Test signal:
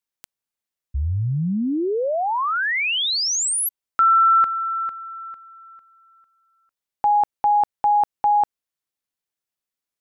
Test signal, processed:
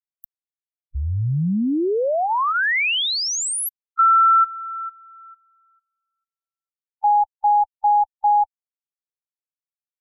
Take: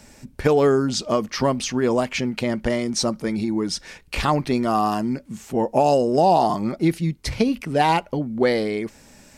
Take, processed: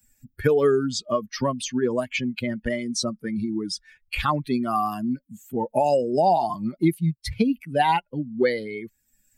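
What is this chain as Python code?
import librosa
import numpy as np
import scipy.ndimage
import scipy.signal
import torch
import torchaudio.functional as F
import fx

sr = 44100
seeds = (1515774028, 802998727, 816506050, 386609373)

y = fx.bin_expand(x, sr, power=2.0)
y = fx.band_squash(y, sr, depth_pct=40)
y = F.gain(torch.from_numpy(y), 2.0).numpy()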